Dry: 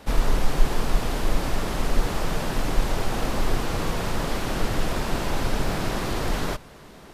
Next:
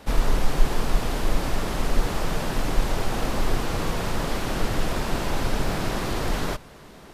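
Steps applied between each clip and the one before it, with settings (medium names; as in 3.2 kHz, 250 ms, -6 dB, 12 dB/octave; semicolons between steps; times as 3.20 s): no audible change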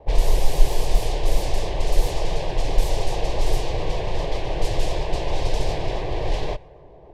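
static phaser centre 560 Hz, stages 4; level-controlled noise filter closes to 950 Hz, open at -15 dBFS; vibrato 7.4 Hz 63 cents; trim +4 dB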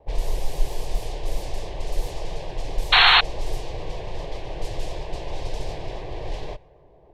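painted sound noise, 2.92–3.21 s, 680–4400 Hz -7 dBFS; trim -7 dB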